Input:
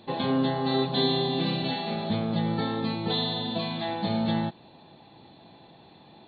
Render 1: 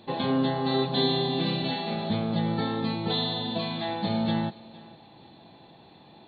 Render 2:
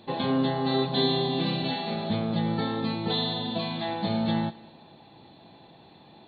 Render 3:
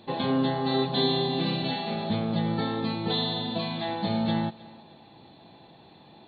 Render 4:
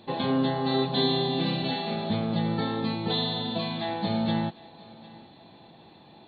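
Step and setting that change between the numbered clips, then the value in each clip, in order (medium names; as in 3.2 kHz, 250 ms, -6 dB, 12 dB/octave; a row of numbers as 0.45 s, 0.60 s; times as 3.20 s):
thinning echo, time: 464 ms, 202 ms, 310 ms, 755 ms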